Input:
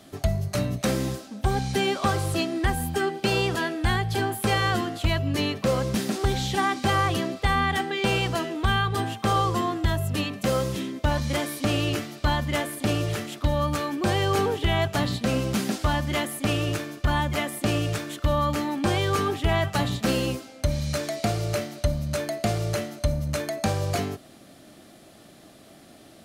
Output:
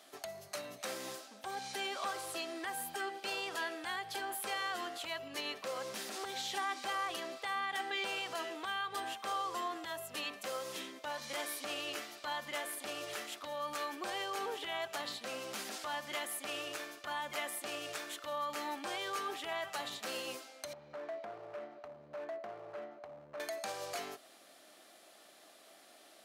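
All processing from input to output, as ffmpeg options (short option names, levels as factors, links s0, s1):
-filter_complex "[0:a]asettb=1/sr,asplit=3[s0][s1][s2];[s0]atrim=end=20.734[s3];[s1]atrim=start=20.73:end=23.4,asetpts=PTS-STARTPTS,afade=t=in:d=0.004:c=qsin,afade=t=out:st=2.666:d=0.004:c=qsin,lowpass=1100,acompressor=threshold=0.0447:ratio=10:attack=3.2:release=140:knee=1:detection=peak,asoftclip=type=hard:threshold=0.0376[s4];[s2]atrim=start=23.396[s5];[s3][s4]acrossfade=d=0.004:c1=hsin:c2=qsin[s6];[s6][s5]acrossfade=d=0.004:c1=qsin:c2=hsin,alimiter=limit=0.0944:level=0:latency=1:release=81,highpass=610,volume=0.531"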